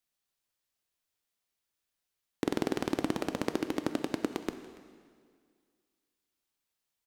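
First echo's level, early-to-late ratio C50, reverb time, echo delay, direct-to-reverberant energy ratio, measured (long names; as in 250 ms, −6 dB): −20.5 dB, 10.0 dB, 2.0 s, 285 ms, 8.5 dB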